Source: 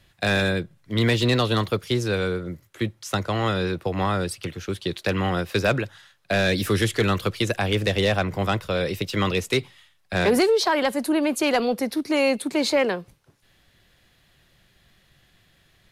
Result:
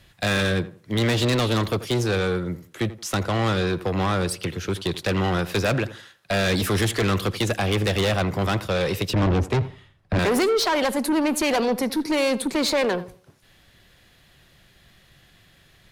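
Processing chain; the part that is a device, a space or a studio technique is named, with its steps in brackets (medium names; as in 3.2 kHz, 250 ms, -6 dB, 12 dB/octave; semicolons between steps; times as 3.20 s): 9.13–10.19 s: tilt EQ -4.5 dB/octave; rockabilly slapback (valve stage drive 23 dB, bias 0.2; tape echo 84 ms, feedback 31%, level -13 dB, low-pass 1.6 kHz); trim +5 dB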